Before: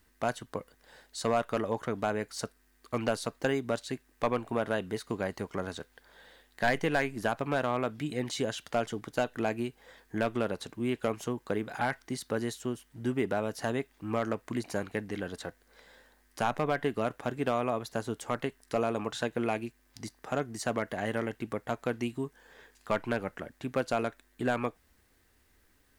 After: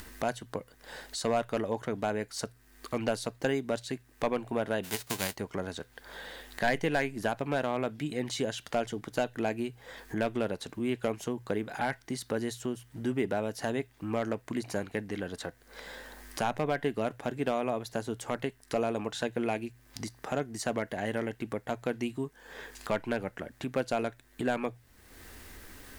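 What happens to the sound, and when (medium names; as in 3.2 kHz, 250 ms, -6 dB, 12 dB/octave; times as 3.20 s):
4.83–5.35 s: formants flattened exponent 0.3
whole clip: hum notches 60/120 Hz; dynamic bell 1.2 kHz, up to -6 dB, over -50 dBFS, Q 3.3; upward compressor, threshold -32 dBFS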